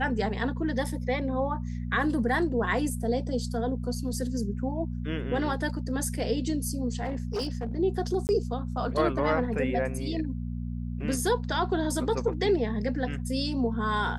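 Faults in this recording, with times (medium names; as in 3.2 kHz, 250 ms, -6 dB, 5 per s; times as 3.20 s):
hum 60 Hz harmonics 4 -33 dBFS
7.04–7.77 s: clipped -26.5 dBFS
8.27–8.29 s: dropout 19 ms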